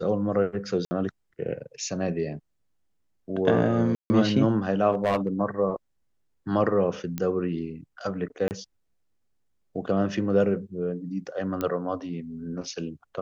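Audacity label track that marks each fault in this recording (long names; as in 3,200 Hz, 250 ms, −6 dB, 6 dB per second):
0.850000	0.910000	drop-out 60 ms
3.950000	4.100000	drop-out 150 ms
4.930000	5.280000	clipping −18 dBFS
7.180000	7.180000	click −16 dBFS
8.480000	8.510000	drop-out 29 ms
11.610000	11.610000	click −15 dBFS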